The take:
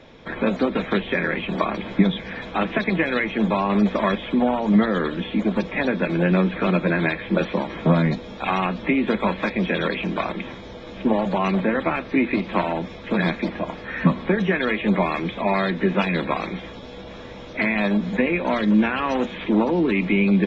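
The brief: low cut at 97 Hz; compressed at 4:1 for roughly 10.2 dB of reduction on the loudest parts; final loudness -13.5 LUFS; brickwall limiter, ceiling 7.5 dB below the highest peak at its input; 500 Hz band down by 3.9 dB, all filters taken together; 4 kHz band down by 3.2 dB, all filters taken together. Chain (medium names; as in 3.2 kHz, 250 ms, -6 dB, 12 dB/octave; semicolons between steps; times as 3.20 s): high-pass 97 Hz; peaking EQ 500 Hz -5 dB; peaking EQ 4 kHz -4 dB; compression 4:1, threshold -25 dBFS; trim +17.5 dB; peak limiter -3 dBFS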